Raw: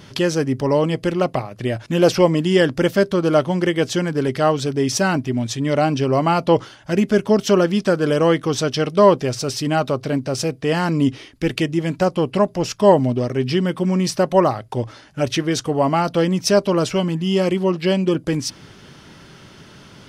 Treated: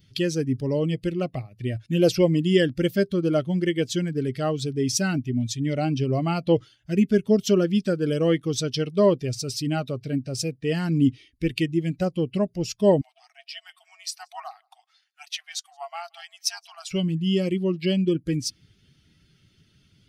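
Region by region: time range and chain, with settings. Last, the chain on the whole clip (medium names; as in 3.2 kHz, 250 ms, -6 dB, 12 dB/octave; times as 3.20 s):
13.01–16.91 s: delay 172 ms -22.5 dB + AM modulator 290 Hz, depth 35% + brick-wall FIR high-pass 650 Hz
whole clip: expander on every frequency bin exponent 1.5; peaking EQ 1 kHz -13 dB 1.2 oct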